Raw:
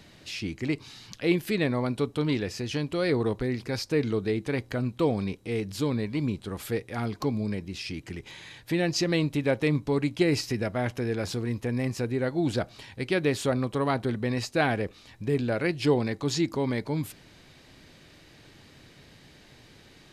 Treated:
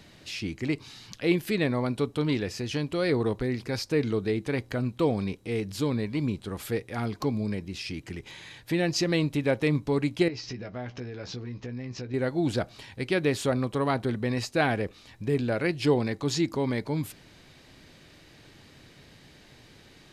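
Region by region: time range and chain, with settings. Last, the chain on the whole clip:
10.28–12.14 s: steep low-pass 6.3 kHz 48 dB/octave + compression 5:1, threshold -35 dBFS + doubling 16 ms -7.5 dB
whole clip: none

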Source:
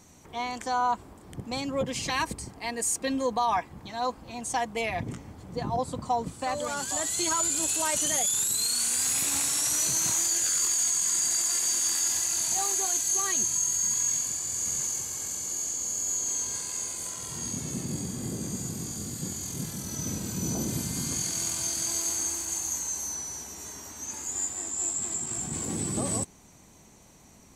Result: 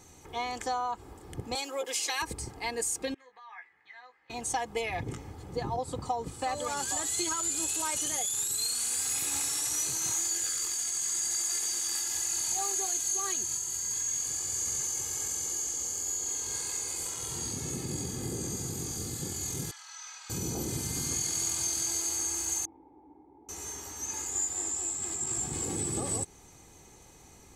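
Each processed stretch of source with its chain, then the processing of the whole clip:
1.55–2.22 s: Bessel high-pass 510 Hz, order 6 + treble shelf 6.8 kHz +11 dB
3.14–4.30 s: compression 3:1, threshold -30 dBFS + band-pass filter 1.9 kHz, Q 6.9 + doubling 16 ms -5 dB
19.71–20.30 s: inverse Chebyshev high-pass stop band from 390 Hz, stop band 50 dB + distance through air 150 m
22.65–23.49 s: square wave that keeps the level + cascade formant filter u + bass shelf 250 Hz -11 dB
whole clip: compression, threshold -29 dBFS; comb 2.4 ms, depth 49%

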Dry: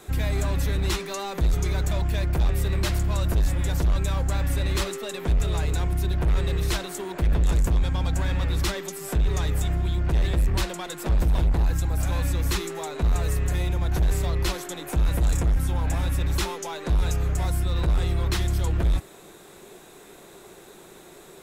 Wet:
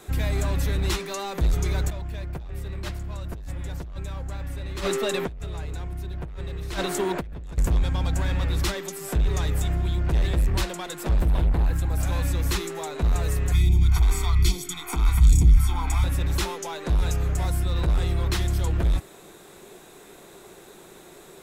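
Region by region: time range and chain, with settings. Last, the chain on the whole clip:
1.90–7.58 s: treble shelf 4.6 kHz -5.5 dB + compressor with a negative ratio -31 dBFS
11.20–11.90 s: peaking EQ 5.8 kHz -7.5 dB 0.9 oct + loudspeaker Doppler distortion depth 0.14 ms
13.52–16.04 s: phase shifter stages 2, 1.2 Hz, lowest notch 100–1300 Hz + comb 0.9 ms, depth 94%
whole clip: none

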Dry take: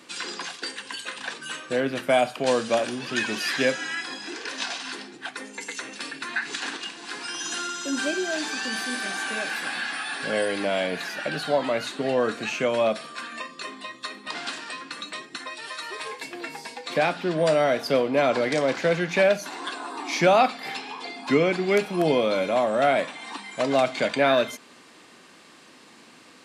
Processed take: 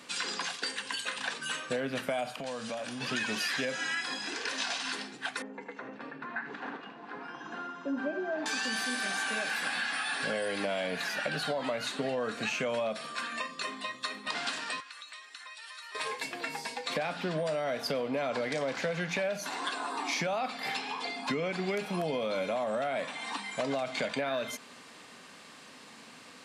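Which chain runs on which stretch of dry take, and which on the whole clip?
2.33–3.01 s: peaking EQ 400 Hz -9 dB 0.33 oct + compression, threshold -34 dBFS
5.42–8.46 s: low-pass 1 kHz + delay 79 ms -12.5 dB
14.80–15.95 s: high-pass 1.1 kHz + compression 3:1, threshold -46 dBFS
whole clip: peaking EQ 340 Hz -10.5 dB 0.27 oct; peak limiter -17 dBFS; compression, threshold -29 dBFS

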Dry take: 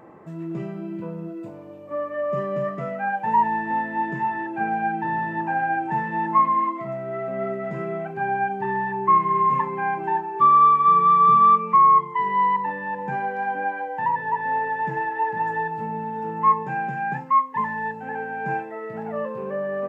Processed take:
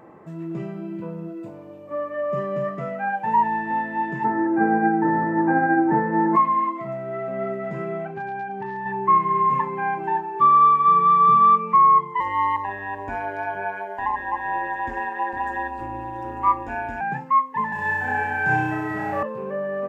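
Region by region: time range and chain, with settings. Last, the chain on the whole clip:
4.23–6.35 s: formants flattened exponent 0.6 + steep low-pass 1.9 kHz 48 dB/octave + small resonant body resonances 300/460 Hz, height 16 dB, ringing for 40 ms
8.05–8.86 s: compression 10:1, threshold -26 dBFS + hard clipper -23.5 dBFS + distance through air 65 m
12.20–17.01 s: treble shelf 2.6 kHz +8 dB + ring modulator 97 Hz
17.72–19.23 s: treble shelf 2.5 kHz +10.5 dB + frequency shift -17 Hz + flutter echo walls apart 5.5 m, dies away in 1.5 s
whole clip: none

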